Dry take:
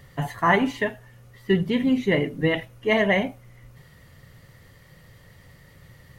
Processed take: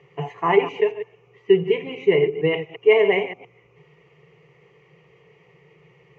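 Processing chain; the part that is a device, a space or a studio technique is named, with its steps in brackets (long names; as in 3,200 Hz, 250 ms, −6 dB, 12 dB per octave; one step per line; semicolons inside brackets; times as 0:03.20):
delay that plays each chunk backwards 115 ms, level −11.5 dB
kitchen radio (loudspeaker in its box 200–4,000 Hz, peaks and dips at 250 Hz −7 dB, 450 Hz +10 dB, 690 Hz +10 dB, 1,000 Hz −7 dB, 2,200 Hz +4 dB, 3,400 Hz −5 dB)
EQ curve with evenly spaced ripples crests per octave 0.73, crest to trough 17 dB
level −4 dB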